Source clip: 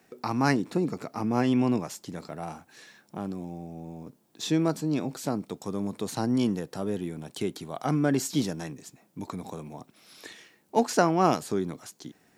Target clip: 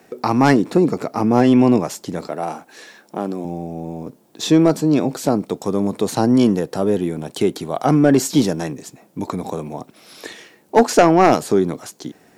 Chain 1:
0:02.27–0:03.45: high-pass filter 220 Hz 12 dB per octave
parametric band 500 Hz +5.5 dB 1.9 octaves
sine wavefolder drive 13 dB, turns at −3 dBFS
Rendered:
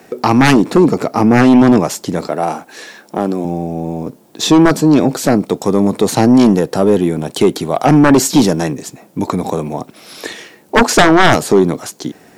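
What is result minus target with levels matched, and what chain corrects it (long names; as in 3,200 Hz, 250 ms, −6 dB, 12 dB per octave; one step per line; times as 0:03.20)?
sine wavefolder: distortion +12 dB
0:02.27–0:03.45: high-pass filter 220 Hz 12 dB per octave
parametric band 500 Hz +5.5 dB 1.9 octaves
sine wavefolder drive 5 dB, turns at −3 dBFS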